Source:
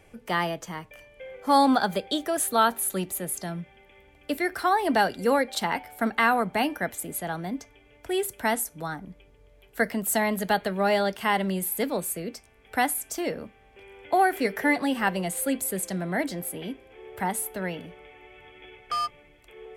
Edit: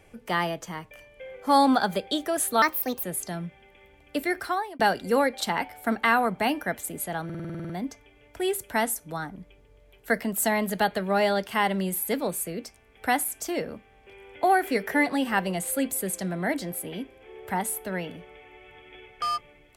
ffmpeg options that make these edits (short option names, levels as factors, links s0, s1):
-filter_complex "[0:a]asplit=13[s0][s1][s2][s3][s4][s5][s6][s7][s8][s9][s10][s11][s12];[s0]atrim=end=2.624[s13];[s1]atrim=start=2.62:end=3.18,asetpts=PTS-STARTPTS,asetrate=59535,aresample=44100,atrim=end_sample=18293,asetpts=PTS-STARTPTS[s14];[s2]atrim=start=3.176:end=4.94,asetpts=PTS-STARTPTS,afade=t=out:st=1.344:d=0.42[s15];[s3]atrim=start=4.94:end=7.442,asetpts=PTS-STARTPTS,afade=t=in:d=0.004:c=hsin[s16];[s4]atrim=start=7.388:end=7.442[s17];[s5]atrim=start=7.388:end=7.442[s18];[s6]atrim=start=7.388:end=7.442[s19];[s7]atrim=start=7.388:end=7.442[s20];[s8]atrim=start=7.388:end=7.442[s21];[s9]atrim=start=7.388:end=7.442[s22];[s10]atrim=start=7.388:end=7.442[s23];[s11]atrim=start=7.388:end=7.442[s24];[s12]atrim=start=7.388[s25];[s13][s14]acrossfade=d=0.004:c1=hsin:c2=hsin[s26];[s15][s16]concat=n=2:v=0:a=1[s27];[s26][s27]acrossfade=d=0.004:c1=hsin:c2=hsin[s28];[s28][s17]acrossfade=d=0.004:c1=hsin:c2=hsin[s29];[s29][s18]acrossfade=d=0.004:c1=hsin:c2=hsin[s30];[s30][s19]acrossfade=d=0.004:c1=hsin:c2=hsin[s31];[s31][s20]acrossfade=d=0.004:c1=hsin:c2=hsin[s32];[s32][s21]acrossfade=d=0.004:c1=hsin:c2=hsin[s33];[s33][s22]acrossfade=d=0.004:c1=hsin:c2=hsin[s34];[s34][s23]acrossfade=d=0.004:c1=hsin:c2=hsin[s35];[s35][s24]acrossfade=d=0.004:c1=hsin:c2=hsin[s36];[s36][s25]acrossfade=d=0.004:c1=hsin:c2=hsin"